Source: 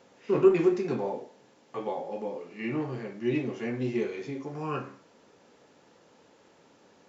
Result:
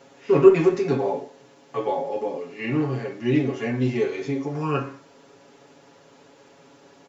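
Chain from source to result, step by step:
comb filter 7.2 ms, depth 95%
level +4.5 dB

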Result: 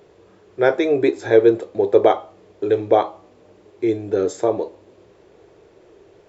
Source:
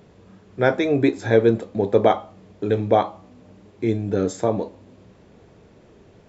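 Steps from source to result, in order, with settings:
low shelf with overshoot 290 Hz −6.5 dB, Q 3

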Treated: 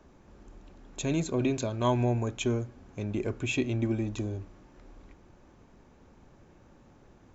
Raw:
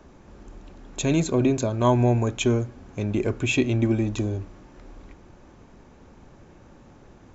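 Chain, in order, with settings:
0:01.38–0:02.05: dynamic equaliser 3,100 Hz, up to +6 dB, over −43 dBFS, Q 0.82
level −7 dB

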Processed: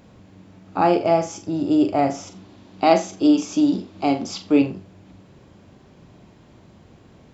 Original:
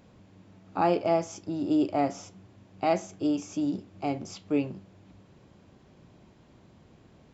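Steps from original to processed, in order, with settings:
0:02.27–0:04.62: octave-band graphic EQ 125/250/1,000/4,000 Hz −7/+6/+4/+8 dB
flutter between parallel walls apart 7.4 metres, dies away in 0.26 s
level +6.5 dB

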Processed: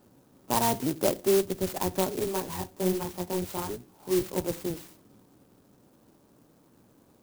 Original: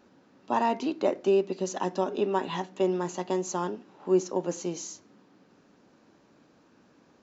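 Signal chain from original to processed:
sub-octave generator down 1 octave, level −5 dB
low-pass that shuts in the quiet parts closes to 1,600 Hz, open at −22.5 dBFS
0:02.19–0:04.38: multi-voice chorus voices 2, 1.2 Hz, delay 20 ms, depth 3.6 ms
converter with an unsteady clock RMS 0.11 ms

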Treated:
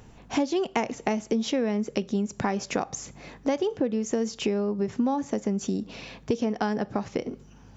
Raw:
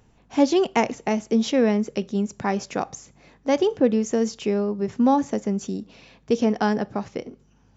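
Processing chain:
downward compressor 6 to 1, threshold −32 dBFS, peak gain reduction 18.5 dB
level +8 dB

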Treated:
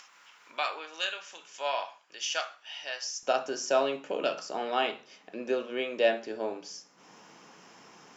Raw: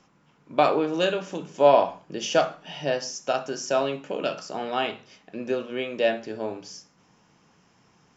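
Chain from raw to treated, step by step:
high-pass filter 1,500 Hz 12 dB per octave, from 0:03.23 290 Hz
upward compression, threshold −41 dBFS
level −1.5 dB

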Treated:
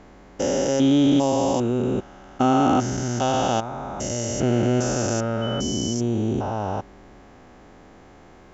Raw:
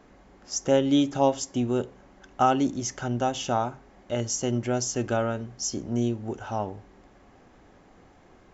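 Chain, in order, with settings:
spectrum averaged block by block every 400 ms
0:05.41–0:05.92: steady tone 3,000 Hz −42 dBFS
level +8.5 dB

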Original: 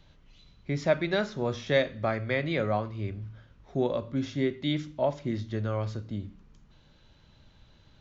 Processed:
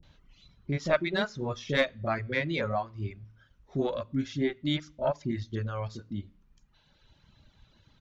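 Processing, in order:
harmonic generator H 3 −25 dB, 4 −22 dB, 6 −37 dB, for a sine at −11 dBFS
reverb reduction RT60 1.4 s
multiband delay without the direct sound lows, highs 30 ms, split 480 Hz
level +2.5 dB

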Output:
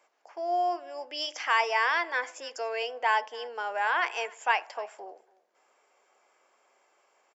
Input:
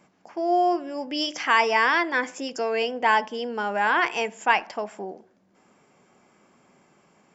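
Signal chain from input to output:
high-pass filter 470 Hz 24 dB per octave
single-tap delay 286 ms −23.5 dB
level −5 dB

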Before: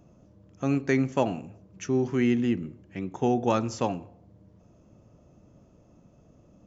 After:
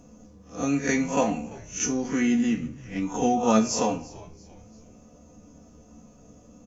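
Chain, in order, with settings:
peak hold with a rise ahead of every peak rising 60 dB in 0.32 s
parametric band 6,400 Hz +11 dB 0.61 octaves
comb filter 4.1 ms, depth 68%
in parallel at −1 dB: downward compressor, threshold −30 dBFS, peak gain reduction 13.5 dB
on the sum: tuned comb filter 73 Hz, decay 0.29 s, harmonics all, mix 80%
on a send: echo with shifted repeats 340 ms, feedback 43%, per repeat −110 Hz, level −20.5 dB
on the sum: flanger 0.6 Hz, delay 7.5 ms, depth 5.9 ms, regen +73%
level +8.5 dB

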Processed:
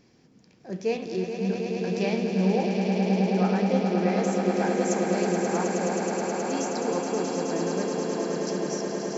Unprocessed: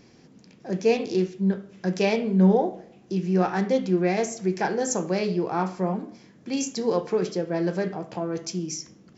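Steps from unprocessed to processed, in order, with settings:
echo that builds up and dies away 106 ms, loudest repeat 8, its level −7 dB
level −6 dB

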